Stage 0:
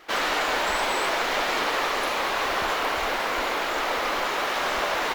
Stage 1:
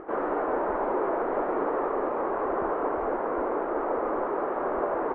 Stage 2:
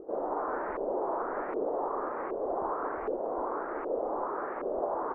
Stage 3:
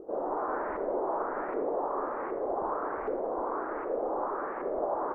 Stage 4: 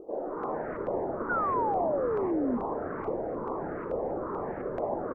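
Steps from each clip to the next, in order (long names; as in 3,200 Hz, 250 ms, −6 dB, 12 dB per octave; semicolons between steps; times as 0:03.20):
low-pass filter 1,300 Hz 24 dB per octave; parametric band 370 Hz +11.5 dB 1.4 octaves; upward compression, threshold −29 dBFS; level −5 dB
auto-filter low-pass saw up 1.3 Hz 450–2,400 Hz; level −8.5 dB
convolution reverb RT60 0.95 s, pre-delay 38 ms, DRR 8 dB
echo with shifted repeats 273 ms, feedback 48%, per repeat −140 Hz, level −7 dB; auto-filter notch saw down 2.3 Hz 640–1,800 Hz; sound drawn into the spectrogram fall, 0:01.29–0:02.58, 230–1,500 Hz −29 dBFS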